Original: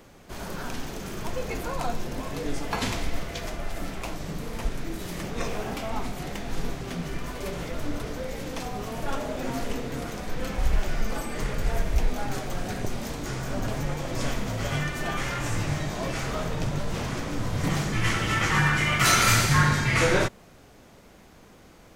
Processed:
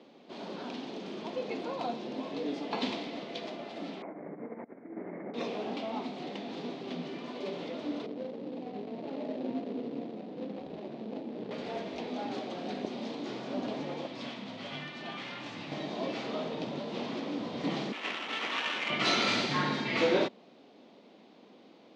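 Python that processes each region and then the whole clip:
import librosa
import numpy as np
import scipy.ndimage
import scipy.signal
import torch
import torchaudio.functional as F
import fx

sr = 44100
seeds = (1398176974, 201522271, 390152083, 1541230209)

y = fx.chain(x, sr, fx.over_compress(threshold_db=-35.0, ratio=-1.0),
    fx.cheby_ripple(hz=2200.0, ripple_db=3), at=(4.02, 5.34))
y = fx.chain(y, sr, fx.median_filter(points=41),
    fx.highpass(hz=54.0, slope=12), at=(8.06, 11.51))
y = fx.chain(y, sr, fx.peak_eq(hz=430.0, db=-10.0, octaves=1.9),
    fx.resample_linear(factor=3), at=(14.07, 15.72))
y = fx.chain(y, sr, fx.highpass(hz=1000.0, slope=24),
    fx.sample_hold(seeds[0], rate_hz=4500.0, jitter_pct=20),
    fx.peak_eq(hz=6400.0, db=-4.0, octaves=0.34), at=(17.92, 18.9))
y = scipy.signal.sosfilt(scipy.signal.cheby1(3, 1.0, [230.0, 4000.0], 'bandpass', fs=sr, output='sos'), y)
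y = fx.peak_eq(y, sr, hz=1500.0, db=-12.0, octaves=1.2)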